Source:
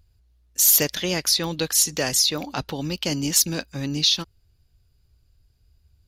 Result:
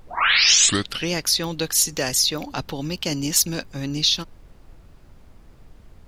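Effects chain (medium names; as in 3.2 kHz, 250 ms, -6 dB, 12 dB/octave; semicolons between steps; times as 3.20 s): tape start-up on the opening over 1.15 s; added noise brown -45 dBFS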